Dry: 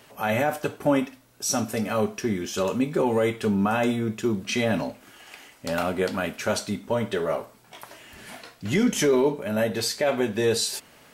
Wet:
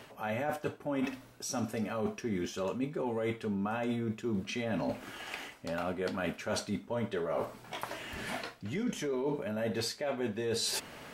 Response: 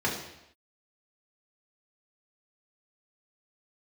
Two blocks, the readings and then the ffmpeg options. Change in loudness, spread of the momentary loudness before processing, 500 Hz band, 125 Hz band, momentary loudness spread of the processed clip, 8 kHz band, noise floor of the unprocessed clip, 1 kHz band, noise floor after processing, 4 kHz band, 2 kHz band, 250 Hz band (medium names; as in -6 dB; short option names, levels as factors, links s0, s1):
-10.0 dB, 15 LU, -10.0 dB, -8.5 dB, 6 LU, -10.5 dB, -54 dBFS, -9.5 dB, -54 dBFS, -8.0 dB, -9.0 dB, -9.5 dB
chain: -af "highshelf=f=5100:g=-9,areverse,acompressor=threshold=0.0158:ratio=16,areverse,volume=1.88"